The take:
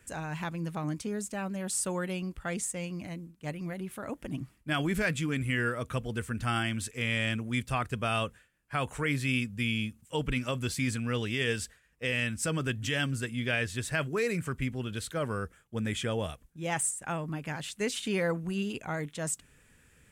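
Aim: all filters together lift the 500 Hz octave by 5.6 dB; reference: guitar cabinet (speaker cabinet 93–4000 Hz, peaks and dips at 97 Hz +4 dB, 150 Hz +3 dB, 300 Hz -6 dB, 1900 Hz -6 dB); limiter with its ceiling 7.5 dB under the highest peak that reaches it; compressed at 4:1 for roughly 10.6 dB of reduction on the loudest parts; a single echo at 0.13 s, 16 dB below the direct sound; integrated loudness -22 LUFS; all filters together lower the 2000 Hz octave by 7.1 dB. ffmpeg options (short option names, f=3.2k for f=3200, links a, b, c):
-af "equalizer=f=500:t=o:g=7.5,equalizer=f=2k:t=o:g=-7,acompressor=threshold=-34dB:ratio=4,alimiter=level_in=6.5dB:limit=-24dB:level=0:latency=1,volume=-6.5dB,highpass=93,equalizer=f=97:t=q:w=4:g=4,equalizer=f=150:t=q:w=4:g=3,equalizer=f=300:t=q:w=4:g=-6,equalizer=f=1.9k:t=q:w=4:g=-6,lowpass=f=4k:w=0.5412,lowpass=f=4k:w=1.3066,aecho=1:1:130:0.158,volume=18.5dB"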